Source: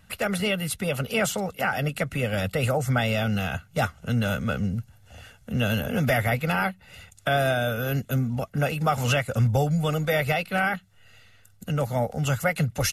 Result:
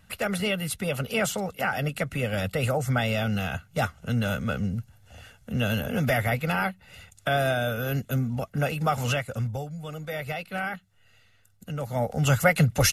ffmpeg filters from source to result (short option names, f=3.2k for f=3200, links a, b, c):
-af "volume=16.5dB,afade=t=out:st=8.93:d=0.78:silence=0.237137,afade=t=in:st=9.71:d=0.84:silence=0.421697,afade=t=in:st=11.82:d=0.55:silence=0.298538"